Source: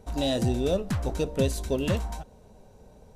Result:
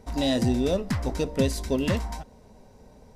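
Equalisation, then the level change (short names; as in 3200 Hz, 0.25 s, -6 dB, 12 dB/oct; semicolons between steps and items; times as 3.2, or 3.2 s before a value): thirty-one-band EQ 250 Hz +6 dB, 1000 Hz +4 dB, 2000 Hz +8 dB, 5000 Hz +7 dB; 0.0 dB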